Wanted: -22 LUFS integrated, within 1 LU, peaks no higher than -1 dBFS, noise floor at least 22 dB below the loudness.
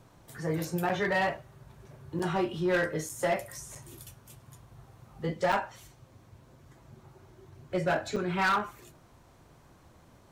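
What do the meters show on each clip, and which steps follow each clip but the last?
clipped 1.0%; flat tops at -21.5 dBFS; dropouts 6; longest dropout 6.3 ms; loudness -30.5 LUFS; peak -21.5 dBFS; loudness target -22.0 LUFS
-> clip repair -21.5 dBFS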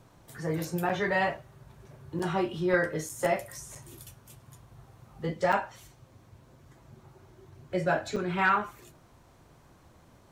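clipped 0.0%; dropouts 6; longest dropout 6.3 ms
-> interpolate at 0.89/2.19/3.09/3.75/5.52/8.16, 6.3 ms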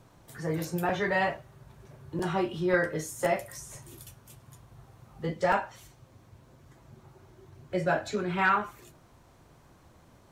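dropouts 0; loudness -29.5 LUFS; peak -12.5 dBFS; loudness target -22.0 LUFS
-> gain +7.5 dB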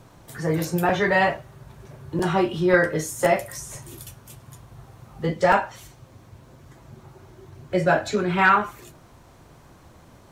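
loudness -22.0 LUFS; peak -5.0 dBFS; noise floor -51 dBFS

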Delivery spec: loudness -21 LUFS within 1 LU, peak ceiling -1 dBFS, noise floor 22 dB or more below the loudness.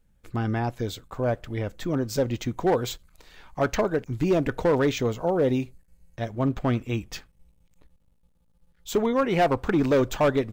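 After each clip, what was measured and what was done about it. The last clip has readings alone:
clipped 1.3%; flat tops at -15.5 dBFS; loudness -26.0 LUFS; peak -15.5 dBFS; loudness target -21.0 LUFS
-> clip repair -15.5 dBFS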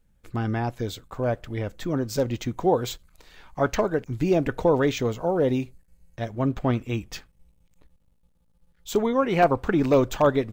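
clipped 0.0%; loudness -25.0 LUFS; peak -6.5 dBFS; loudness target -21.0 LUFS
-> gain +4 dB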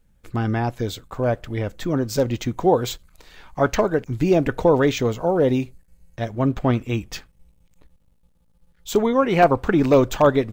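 loudness -21.0 LUFS; peak -2.5 dBFS; noise floor -60 dBFS

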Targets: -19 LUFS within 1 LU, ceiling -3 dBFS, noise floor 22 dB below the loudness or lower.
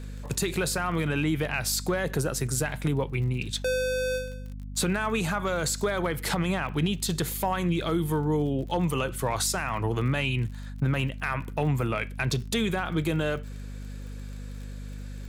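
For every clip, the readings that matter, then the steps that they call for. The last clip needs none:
ticks 34/s; hum 50 Hz; harmonics up to 250 Hz; hum level -35 dBFS; loudness -28.0 LUFS; peak -15.5 dBFS; loudness target -19.0 LUFS
-> de-click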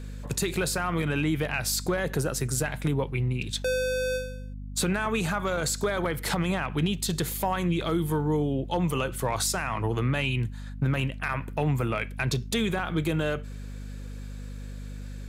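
ticks 0.20/s; hum 50 Hz; harmonics up to 250 Hz; hum level -35 dBFS
-> de-hum 50 Hz, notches 5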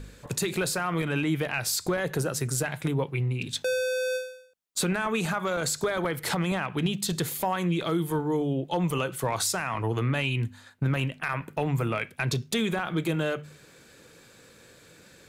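hum none; loudness -28.5 LUFS; peak -16.0 dBFS; loudness target -19.0 LUFS
-> gain +9.5 dB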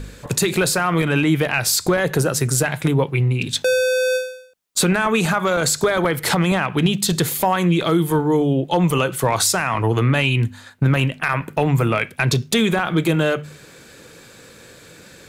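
loudness -19.0 LUFS; peak -6.5 dBFS; noise floor -45 dBFS

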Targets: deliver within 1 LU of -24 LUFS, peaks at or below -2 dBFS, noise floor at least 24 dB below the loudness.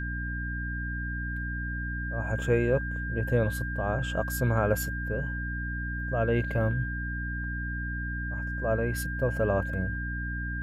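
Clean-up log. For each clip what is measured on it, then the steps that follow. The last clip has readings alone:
hum 60 Hz; harmonics up to 300 Hz; hum level -32 dBFS; steady tone 1600 Hz; tone level -35 dBFS; loudness -30.0 LUFS; peak -12.0 dBFS; loudness target -24.0 LUFS
-> de-hum 60 Hz, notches 5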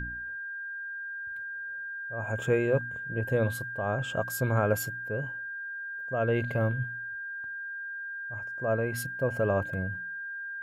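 hum none; steady tone 1600 Hz; tone level -35 dBFS
-> notch 1600 Hz, Q 30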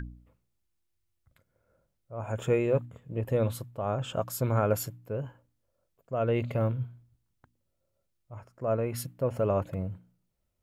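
steady tone none; loudness -31.0 LUFS; peak -13.5 dBFS; loudness target -24.0 LUFS
-> gain +7 dB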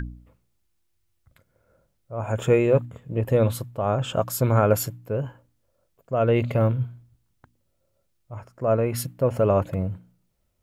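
loudness -24.0 LUFS; peak -6.5 dBFS; noise floor -71 dBFS

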